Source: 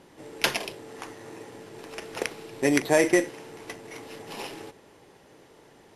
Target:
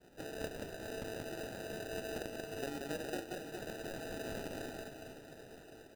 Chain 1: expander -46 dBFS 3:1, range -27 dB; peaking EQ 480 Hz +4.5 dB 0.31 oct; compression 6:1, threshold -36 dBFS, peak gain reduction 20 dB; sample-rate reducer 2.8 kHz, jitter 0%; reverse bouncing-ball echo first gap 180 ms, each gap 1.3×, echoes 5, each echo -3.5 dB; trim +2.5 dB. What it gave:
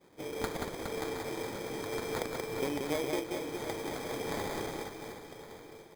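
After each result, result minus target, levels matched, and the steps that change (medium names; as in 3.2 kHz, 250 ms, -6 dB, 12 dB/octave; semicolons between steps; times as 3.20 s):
sample-rate reducer: distortion -12 dB; compression: peak gain reduction -7.5 dB
change: sample-rate reducer 1.1 kHz, jitter 0%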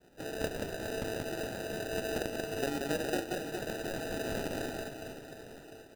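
compression: peak gain reduction -7.5 dB
change: compression 6:1, threshold -45 dBFS, peak gain reduction 27.5 dB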